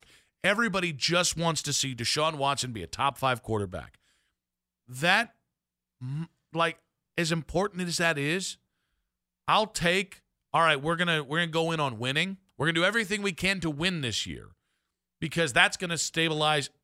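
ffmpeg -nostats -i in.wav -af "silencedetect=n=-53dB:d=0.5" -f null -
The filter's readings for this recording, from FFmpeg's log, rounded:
silence_start: 3.95
silence_end: 4.88 | silence_duration: 0.93
silence_start: 5.31
silence_end: 6.01 | silence_duration: 0.70
silence_start: 8.55
silence_end: 9.48 | silence_duration: 0.93
silence_start: 14.53
silence_end: 15.21 | silence_duration: 0.69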